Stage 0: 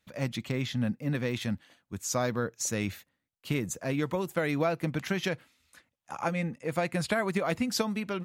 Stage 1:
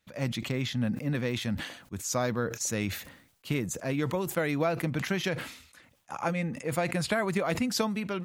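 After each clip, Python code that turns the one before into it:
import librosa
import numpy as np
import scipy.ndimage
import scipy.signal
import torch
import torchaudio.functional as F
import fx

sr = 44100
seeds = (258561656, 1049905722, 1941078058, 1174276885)

y = fx.sustainer(x, sr, db_per_s=83.0)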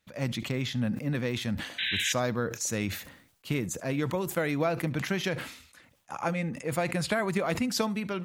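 y = fx.spec_paint(x, sr, seeds[0], shape='noise', start_s=1.78, length_s=0.35, low_hz=1500.0, high_hz=4000.0, level_db=-30.0)
y = y + 10.0 ** (-22.0 / 20.0) * np.pad(y, (int(71 * sr / 1000.0), 0))[:len(y)]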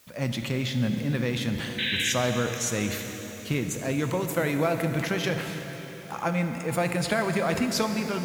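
y = fx.quant_dither(x, sr, seeds[1], bits=10, dither='triangular')
y = fx.rev_plate(y, sr, seeds[2], rt60_s=4.5, hf_ratio=0.9, predelay_ms=0, drr_db=5.5)
y = y * 10.0 ** (2.0 / 20.0)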